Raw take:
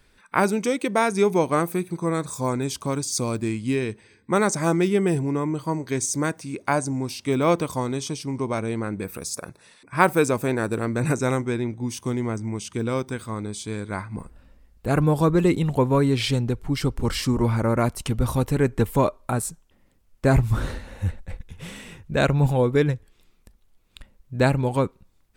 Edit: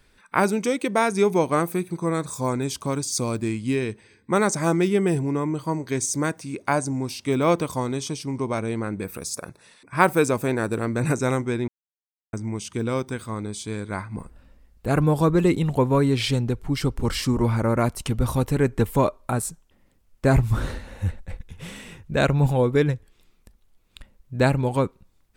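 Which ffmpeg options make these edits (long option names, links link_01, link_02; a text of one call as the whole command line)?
ffmpeg -i in.wav -filter_complex "[0:a]asplit=3[link_01][link_02][link_03];[link_01]atrim=end=11.68,asetpts=PTS-STARTPTS,afade=type=out:start_time=11.676:duration=0.004:curve=hsin[link_04];[link_02]atrim=start=11.68:end=12.33,asetpts=PTS-STARTPTS,volume=0[link_05];[link_03]atrim=start=12.33,asetpts=PTS-STARTPTS,afade=type=in:duration=0.004:curve=hsin[link_06];[link_04][link_05][link_06]concat=n=3:v=0:a=1" out.wav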